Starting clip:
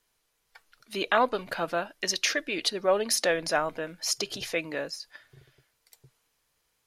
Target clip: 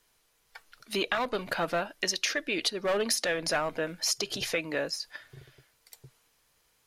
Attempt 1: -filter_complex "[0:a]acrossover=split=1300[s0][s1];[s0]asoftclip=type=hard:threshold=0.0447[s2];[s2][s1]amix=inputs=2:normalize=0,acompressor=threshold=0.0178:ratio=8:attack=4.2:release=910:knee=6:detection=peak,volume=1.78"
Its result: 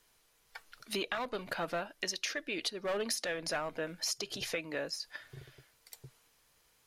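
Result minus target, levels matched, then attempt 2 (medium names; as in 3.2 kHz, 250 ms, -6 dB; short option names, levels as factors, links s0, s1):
compression: peak gain reduction +7 dB
-filter_complex "[0:a]acrossover=split=1300[s0][s1];[s0]asoftclip=type=hard:threshold=0.0447[s2];[s2][s1]amix=inputs=2:normalize=0,acompressor=threshold=0.0447:ratio=8:attack=4.2:release=910:knee=6:detection=peak,volume=1.78"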